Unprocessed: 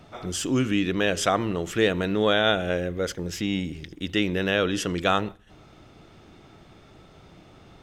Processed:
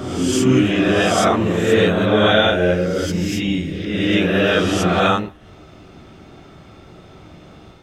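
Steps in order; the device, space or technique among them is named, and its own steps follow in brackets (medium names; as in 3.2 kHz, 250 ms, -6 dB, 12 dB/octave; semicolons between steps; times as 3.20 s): reverse reverb (reverse; reverberation RT60 1.6 s, pre-delay 4 ms, DRR -6.5 dB; reverse)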